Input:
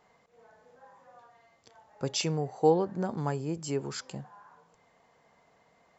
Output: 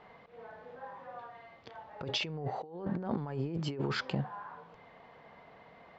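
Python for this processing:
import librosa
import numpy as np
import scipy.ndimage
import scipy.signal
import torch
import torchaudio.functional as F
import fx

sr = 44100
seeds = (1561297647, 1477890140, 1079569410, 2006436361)

y = scipy.signal.sosfilt(scipy.signal.butter(4, 3700.0, 'lowpass', fs=sr, output='sos'), x)
y = fx.over_compress(y, sr, threshold_db=-39.0, ratio=-1.0)
y = y * 10.0 ** (2.0 / 20.0)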